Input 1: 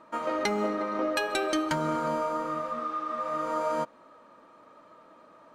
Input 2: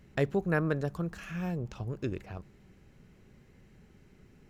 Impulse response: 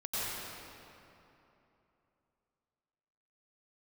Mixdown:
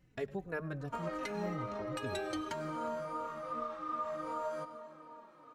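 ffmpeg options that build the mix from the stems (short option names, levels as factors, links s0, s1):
-filter_complex "[0:a]acompressor=threshold=0.0282:ratio=6,adelay=800,volume=0.668,asplit=2[s0][s1];[s1]volume=0.188[s2];[1:a]volume=0.447,asplit=2[s3][s4];[s4]volume=0.1[s5];[2:a]atrim=start_sample=2205[s6];[s2][s6]afir=irnorm=-1:irlink=0[s7];[s5]aecho=0:1:104|208|312|416|520:1|0.37|0.137|0.0507|0.0187[s8];[s0][s3][s7][s8]amix=inputs=4:normalize=0,asplit=2[s9][s10];[s10]adelay=3.4,afreqshift=-2.6[s11];[s9][s11]amix=inputs=2:normalize=1"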